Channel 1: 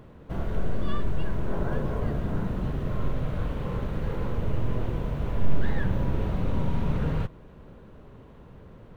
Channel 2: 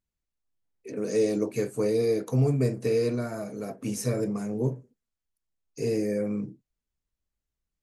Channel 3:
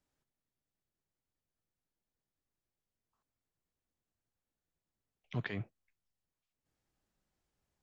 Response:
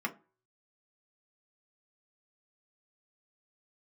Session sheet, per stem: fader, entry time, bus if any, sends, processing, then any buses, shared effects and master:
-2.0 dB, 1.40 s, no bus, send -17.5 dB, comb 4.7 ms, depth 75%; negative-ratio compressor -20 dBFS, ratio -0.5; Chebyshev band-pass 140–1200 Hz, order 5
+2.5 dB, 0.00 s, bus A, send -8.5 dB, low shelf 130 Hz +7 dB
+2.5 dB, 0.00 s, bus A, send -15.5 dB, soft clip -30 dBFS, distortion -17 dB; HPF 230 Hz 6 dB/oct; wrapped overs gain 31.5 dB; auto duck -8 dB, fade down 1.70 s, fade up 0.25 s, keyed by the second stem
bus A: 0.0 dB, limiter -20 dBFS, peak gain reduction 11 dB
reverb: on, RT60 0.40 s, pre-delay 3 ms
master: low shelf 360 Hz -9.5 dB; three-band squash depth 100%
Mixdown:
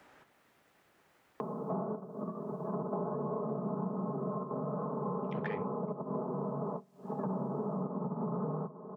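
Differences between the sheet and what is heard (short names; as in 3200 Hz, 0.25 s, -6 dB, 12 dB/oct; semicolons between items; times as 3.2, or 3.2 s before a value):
stem 2: muted; stem 3: missing wrapped overs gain 31.5 dB; reverb return -8.0 dB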